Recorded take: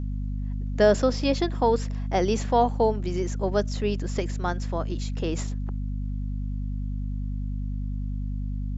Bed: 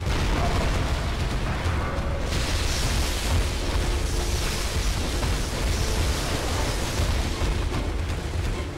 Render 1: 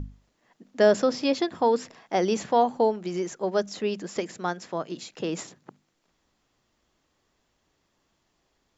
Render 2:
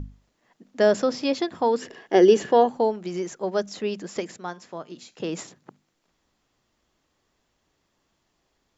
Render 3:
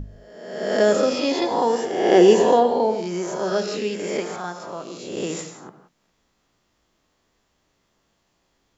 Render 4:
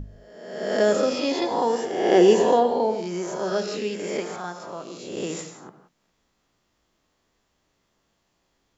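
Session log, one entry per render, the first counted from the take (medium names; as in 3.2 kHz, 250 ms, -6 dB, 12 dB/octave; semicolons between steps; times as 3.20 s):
hum notches 50/100/150/200/250 Hz
1.81–2.68 s: small resonant body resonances 390/1700/2900 Hz, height 15 dB -> 12 dB, ringing for 25 ms; 4.36–5.20 s: feedback comb 81 Hz, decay 0.36 s, harmonics odd, mix 50%
reverse spectral sustain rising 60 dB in 1.06 s; gated-style reverb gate 200 ms flat, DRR 7 dB
trim -2.5 dB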